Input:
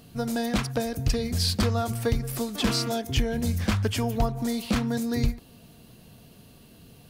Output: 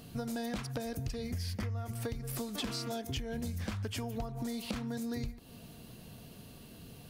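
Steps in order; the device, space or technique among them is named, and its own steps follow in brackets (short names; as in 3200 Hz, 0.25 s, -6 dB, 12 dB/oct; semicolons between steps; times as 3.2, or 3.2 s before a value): 1.32–1.91 thirty-one-band EQ 100 Hz +10 dB, 2000 Hz +10 dB, 4000 Hz -10 dB, 8000 Hz -7 dB; serial compression, leveller first (compressor 2:1, threshold -24 dBFS, peak gain reduction 5.5 dB; compressor 6:1, threshold -35 dBFS, peak gain reduction 14 dB)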